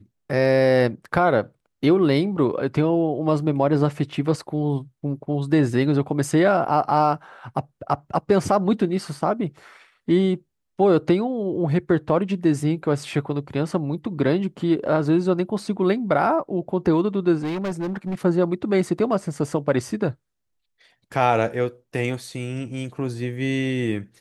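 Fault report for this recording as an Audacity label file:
17.390000	18.150000	clipping −23 dBFS

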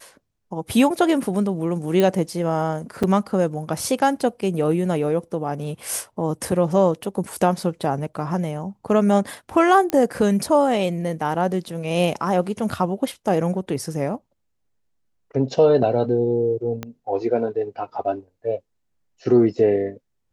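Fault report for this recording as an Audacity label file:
2.000000	2.000000	click −8 dBFS
3.030000	3.030000	drop-out 4.9 ms
9.900000	9.900000	click −9 dBFS
16.830000	16.830000	click −14 dBFS

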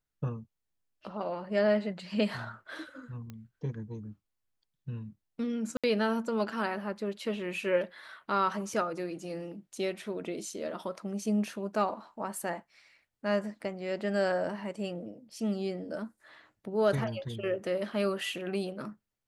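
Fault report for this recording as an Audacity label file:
3.300000	3.300000	click −29 dBFS
5.770000	5.840000	drop-out 66 ms

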